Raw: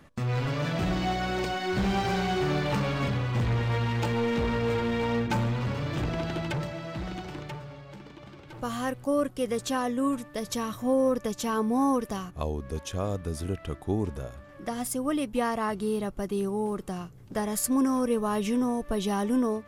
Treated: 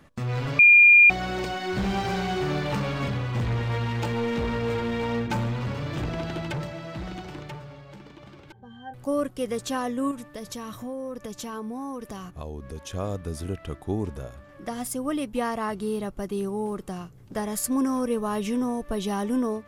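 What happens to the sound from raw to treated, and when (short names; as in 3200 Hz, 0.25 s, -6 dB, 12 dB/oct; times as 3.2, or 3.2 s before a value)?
0.59–1.1 bleep 2410 Hz -10 dBFS
8.52–8.94 octave resonator G, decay 0.13 s
10.11–12.9 compressor 3:1, threshold -33 dBFS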